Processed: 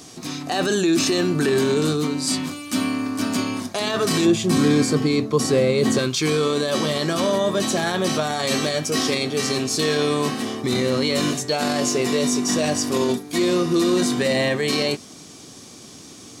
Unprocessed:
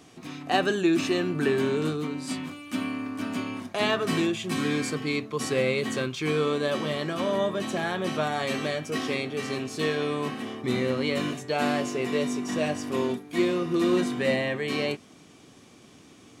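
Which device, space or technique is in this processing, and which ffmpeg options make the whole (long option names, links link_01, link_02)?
over-bright horn tweeter: -filter_complex "[0:a]highshelf=frequency=3600:width_type=q:width=1.5:gain=7.5,alimiter=limit=-20dB:level=0:latency=1:release=10,asettb=1/sr,asplit=3[link_01][link_02][link_03];[link_01]atrim=end=4.254[link_04];[link_02]atrim=start=4.25:end=5.99,asetpts=PTS-STARTPTS,afade=type=in:duration=0.004:curve=qsin,afade=type=out:start_time=1.736:duration=0.004:curve=qsin,tiltshelf=frequency=1200:gain=5[link_05];[link_03]atrim=start=5.986[link_06];[link_04][link_05]acrossfade=duration=0.004:curve1=hsin:curve2=qsin[link_07];[link_07][link_06]acrossfade=duration=0.004:curve1=qsin:curve2=hsin,volume=8dB"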